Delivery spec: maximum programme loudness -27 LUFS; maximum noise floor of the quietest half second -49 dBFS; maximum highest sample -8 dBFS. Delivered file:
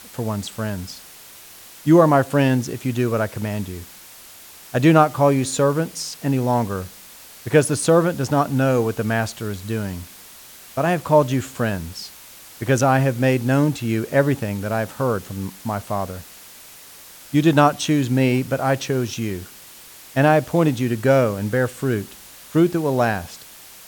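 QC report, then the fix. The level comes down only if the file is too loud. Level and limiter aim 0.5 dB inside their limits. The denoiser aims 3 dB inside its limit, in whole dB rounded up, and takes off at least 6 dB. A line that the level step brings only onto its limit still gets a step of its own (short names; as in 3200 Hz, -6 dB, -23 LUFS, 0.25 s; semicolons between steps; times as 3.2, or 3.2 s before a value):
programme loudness -20.0 LUFS: fail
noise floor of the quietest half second -43 dBFS: fail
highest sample -2.5 dBFS: fail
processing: gain -7.5 dB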